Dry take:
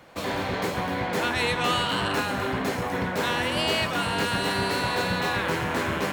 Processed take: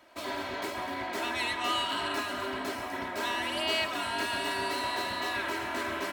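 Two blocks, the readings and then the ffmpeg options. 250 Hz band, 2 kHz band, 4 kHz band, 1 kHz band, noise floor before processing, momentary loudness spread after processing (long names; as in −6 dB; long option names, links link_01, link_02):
−9.0 dB, −5.5 dB, −4.5 dB, −5.0 dB, −30 dBFS, 6 LU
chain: -filter_complex "[0:a]lowshelf=frequency=210:gain=-11.5,aecho=1:1:3.1:0.84,asplit=2[link_01][link_02];[link_02]aecho=0:1:633:0.188[link_03];[link_01][link_03]amix=inputs=2:normalize=0,volume=-7.5dB"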